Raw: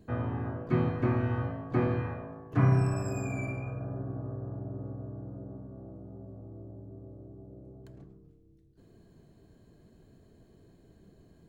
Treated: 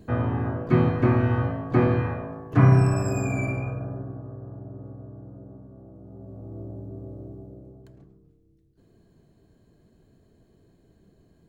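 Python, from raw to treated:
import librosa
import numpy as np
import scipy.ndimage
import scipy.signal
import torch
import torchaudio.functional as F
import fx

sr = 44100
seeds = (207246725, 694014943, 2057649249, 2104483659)

y = fx.gain(x, sr, db=fx.line((3.63, 7.5), (4.24, -1.0), (5.92, -1.0), (6.6, 8.5), (7.29, 8.5), (7.98, -1.0)))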